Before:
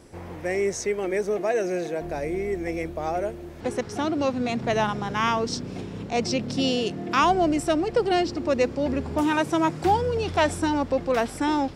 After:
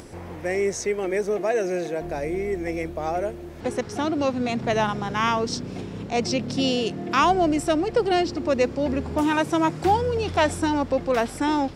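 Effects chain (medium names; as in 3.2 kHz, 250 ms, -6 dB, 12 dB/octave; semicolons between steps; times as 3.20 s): upward compressor, threshold -37 dBFS; trim +1 dB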